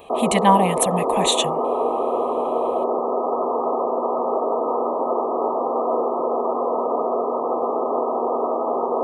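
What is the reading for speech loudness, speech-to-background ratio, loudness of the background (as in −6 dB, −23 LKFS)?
−20.5 LKFS, 2.0 dB, −22.5 LKFS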